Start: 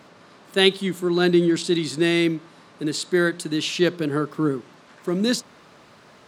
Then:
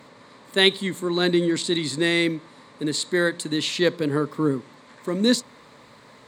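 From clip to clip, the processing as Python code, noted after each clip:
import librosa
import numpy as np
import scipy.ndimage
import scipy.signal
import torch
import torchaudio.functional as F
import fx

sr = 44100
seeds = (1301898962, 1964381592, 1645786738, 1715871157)

y = fx.ripple_eq(x, sr, per_octave=1.0, db=7)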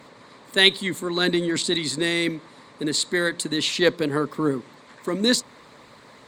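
y = fx.cheby_harmonics(x, sr, harmonics=(6,), levels_db=(-41,), full_scale_db=-3.0)
y = fx.hpss(y, sr, part='percussive', gain_db=7)
y = y * 10.0 ** (-3.0 / 20.0)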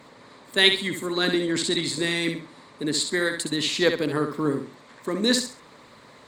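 y = fx.echo_feedback(x, sr, ms=66, feedback_pct=28, wet_db=-7.0)
y = y * 10.0 ** (-2.0 / 20.0)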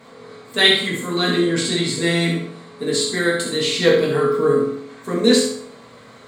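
y = fx.rev_fdn(x, sr, rt60_s=0.66, lf_ratio=1.1, hf_ratio=0.7, size_ms=13.0, drr_db=-5.5)
y = y * 10.0 ** (-1.0 / 20.0)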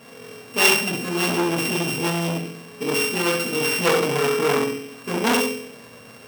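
y = np.r_[np.sort(x[:len(x) // 16 * 16].reshape(-1, 16), axis=1).ravel(), x[len(x) // 16 * 16:]]
y = fx.transformer_sat(y, sr, knee_hz=2200.0)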